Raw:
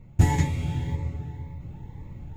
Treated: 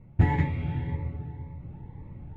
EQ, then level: air absorption 450 m; dynamic EQ 1900 Hz, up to +5 dB, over -54 dBFS, Q 1.6; low shelf 82 Hz -5.5 dB; 0.0 dB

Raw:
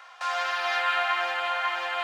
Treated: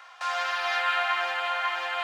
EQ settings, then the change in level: HPF 400 Hz 6 dB/oct; 0.0 dB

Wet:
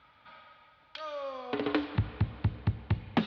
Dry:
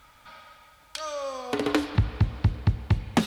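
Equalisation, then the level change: HPF 86 Hz 12 dB/oct; synth low-pass 3900 Hz, resonance Q 1.5; air absorption 240 m; -4.5 dB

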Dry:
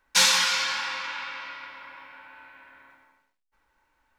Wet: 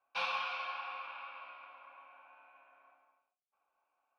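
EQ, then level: running mean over 6 samples; vowel filter a; +2.0 dB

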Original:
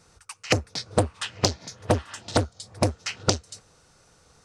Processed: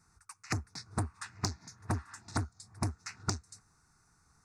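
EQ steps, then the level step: fixed phaser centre 1300 Hz, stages 4; -7.5 dB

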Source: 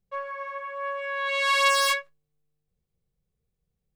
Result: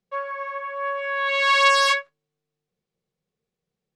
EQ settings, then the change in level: three-band isolator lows -22 dB, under 170 Hz, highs -18 dB, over 7300 Hz; dynamic EQ 1400 Hz, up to +7 dB, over -47 dBFS, Q 6.8; +4.0 dB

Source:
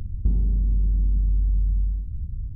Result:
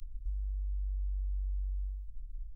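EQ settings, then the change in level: inverse Chebyshev band-stop 200–440 Hz, stop band 80 dB; fixed phaser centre 330 Hz, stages 8; -5.5 dB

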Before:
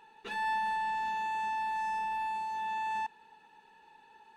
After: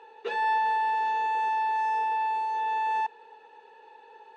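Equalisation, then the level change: resonant high-pass 470 Hz, resonance Q 4.9; air absorption 130 m; high shelf 7000 Hz +7 dB; +4.5 dB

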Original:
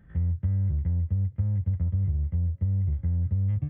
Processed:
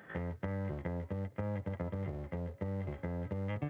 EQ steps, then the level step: Chebyshev high-pass 510 Hz, order 2; +14.0 dB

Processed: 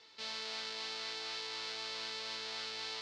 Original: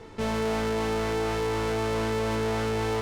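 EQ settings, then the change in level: band-pass 4400 Hz, Q 3.3; air absorption 57 m; +6.5 dB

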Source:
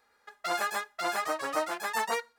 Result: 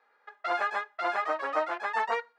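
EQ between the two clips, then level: BPF 410–2300 Hz; +2.5 dB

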